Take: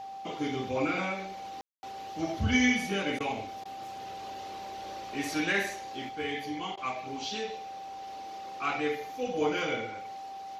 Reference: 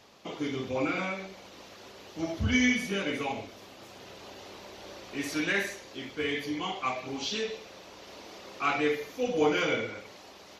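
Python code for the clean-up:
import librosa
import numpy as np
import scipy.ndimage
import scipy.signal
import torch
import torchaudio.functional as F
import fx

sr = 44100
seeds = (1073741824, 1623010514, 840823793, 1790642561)

y = fx.notch(x, sr, hz=780.0, q=30.0)
y = fx.fix_ambience(y, sr, seeds[0], print_start_s=3.53, print_end_s=4.03, start_s=1.61, end_s=1.83)
y = fx.fix_interpolate(y, sr, at_s=(3.19, 3.64, 6.76), length_ms=12.0)
y = fx.fix_level(y, sr, at_s=6.09, step_db=3.5)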